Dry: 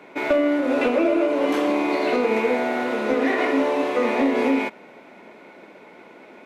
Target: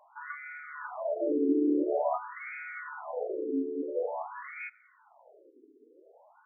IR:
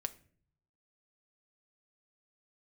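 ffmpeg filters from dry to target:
-filter_complex "[0:a]asettb=1/sr,asplit=3[link_01][link_02][link_03];[link_01]atrim=end=1.274[link_04];[link_02]atrim=start=1.27:end=2.18,asetpts=PTS-STARTPTS,afade=type=in:duration=0.004:curve=qsin,afade=type=out:start_time=0.906:duration=0.004:curve=qsin,acontrast=83[link_05];[link_03]atrim=start=2.176[link_06];[link_04][link_05]acrossfade=duration=0.004:curve1=hsin:curve2=qsin[link_07];[link_07][link_06]acrossfade=duration=0.004:curve1=qsin:curve2=hsin,afftfilt=real='re*between(b*sr/1024,320*pow(1800/320,0.5+0.5*sin(2*PI*0.48*pts/sr))/1.41,320*pow(1800/320,0.5+0.5*sin(2*PI*0.48*pts/sr))*1.41)':imag='im*between(b*sr/1024,320*pow(1800/320,0.5+0.5*sin(2*PI*0.48*pts/sr))/1.41,320*pow(1800/320,0.5+0.5*sin(2*PI*0.48*pts/sr))*1.41)':win_size=1024:overlap=0.75,volume=-8.5dB"

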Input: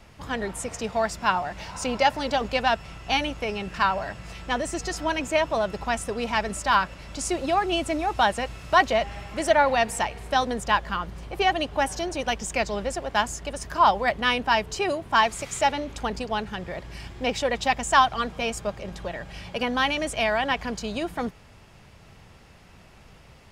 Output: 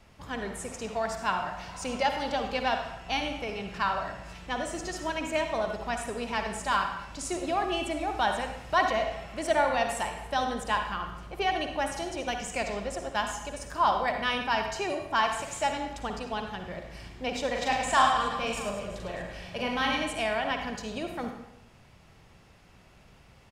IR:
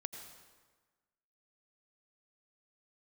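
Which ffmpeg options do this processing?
-filter_complex "[0:a]asplit=3[link_01][link_02][link_03];[link_01]afade=type=out:start_time=17.54:duration=0.02[link_04];[link_02]aecho=1:1:40|104|206.4|370.2|632.4:0.631|0.398|0.251|0.158|0.1,afade=type=in:start_time=17.54:duration=0.02,afade=type=out:start_time=20.02:duration=0.02[link_05];[link_03]afade=type=in:start_time=20.02:duration=0.02[link_06];[link_04][link_05][link_06]amix=inputs=3:normalize=0[link_07];[1:a]atrim=start_sample=2205,asetrate=74970,aresample=44100[link_08];[link_07][link_08]afir=irnorm=-1:irlink=0,volume=1.5dB"

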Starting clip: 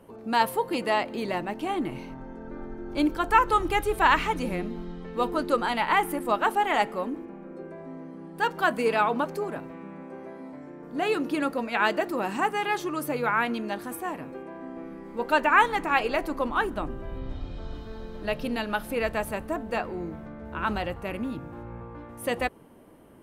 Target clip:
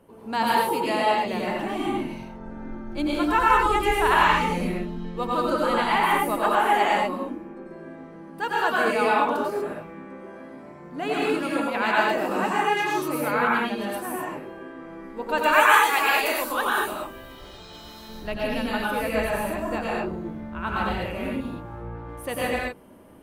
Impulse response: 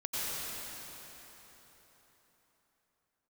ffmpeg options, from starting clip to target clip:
-filter_complex "[0:a]asplit=3[link_01][link_02][link_03];[link_01]afade=type=out:start_time=15.37:duration=0.02[link_04];[link_02]aemphasis=mode=production:type=riaa,afade=type=in:start_time=15.37:duration=0.02,afade=type=out:start_time=18.08:duration=0.02[link_05];[link_03]afade=type=in:start_time=18.08:duration=0.02[link_06];[link_04][link_05][link_06]amix=inputs=3:normalize=0[link_07];[1:a]atrim=start_sample=2205,afade=type=out:start_time=0.3:duration=0.01,atrim=end_sample=13671[link_08];[link_07][link_08]afir=irnorm=-1:irlink=0"

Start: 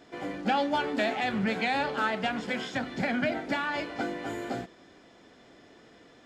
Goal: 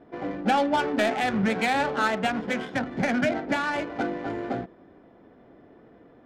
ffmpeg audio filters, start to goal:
ffmpeg -i in.wav -af "adynamicsmooth=sensitivity=3.5:basefreq=1100,volume=4.5dB" out.wav

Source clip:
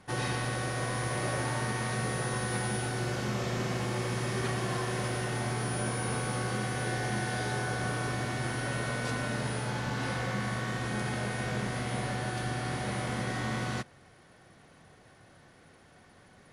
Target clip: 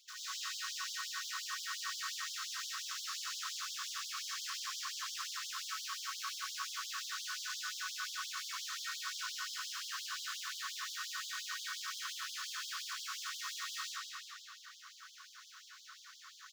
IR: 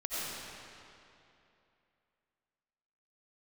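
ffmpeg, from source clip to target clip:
-filter_complex "[0:a]aresample=16000,asoftclip=type=tanh:threshold=-36.5dB,aresample=44100,acrossover=split=230[link_01][link_02];[link_02]acompressor=threshold=-45dB:ratio=3[link_03];[link_01][link_03]amix=inputs=2:normalize=0,aecho=1:1:385:0.282,acrossover=split=1600[link_04][link_05];[link_04]acrusher=bits=6:mode=log:mix=0:aa=0.000001[link_06];[link_06][link_05]amix=inputs=2:normalize=0,equalizer=frequency=2100:width_type=o:width=1.2:gain=-14[link_07];[1:a]atrim=start_sample=2205[link_08];[link_07][link_08]afir=irnorm=-1:irlink=0,afftfilt=real='re*gte(b*sr/1024,990*pow(3100/990,0.5+0.5*sin(2*PI*5.7*pts/sr)))':imag='im*gte(b*sr/1024,990*pow(3100/990,0.5+0.5*sin(2*PI*5.7*pts/sr)))':win_size=1024:overlap=0.75,volume=11.5dB"

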